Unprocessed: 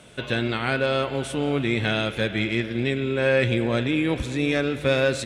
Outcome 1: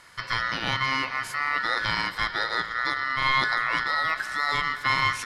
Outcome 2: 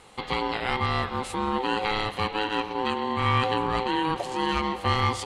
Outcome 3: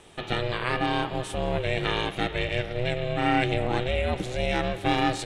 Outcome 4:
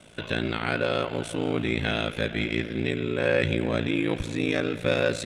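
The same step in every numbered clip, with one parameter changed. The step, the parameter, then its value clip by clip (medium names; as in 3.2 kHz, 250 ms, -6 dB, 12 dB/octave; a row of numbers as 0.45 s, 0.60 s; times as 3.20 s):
ring modulator, frequency: 1.6 kHz, 640 Hz, 250 Hz, 28 Hz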